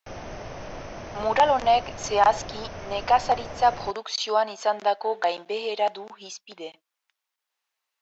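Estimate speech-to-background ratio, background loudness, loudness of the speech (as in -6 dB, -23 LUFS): 14.0 dB, -38.5 LUFS, -24.5 LUFS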